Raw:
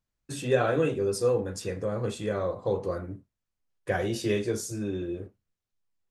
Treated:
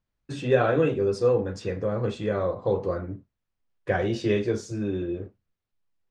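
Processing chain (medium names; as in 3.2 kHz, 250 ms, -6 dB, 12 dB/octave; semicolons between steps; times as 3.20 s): distance through air 140 m; trim +3.5 dB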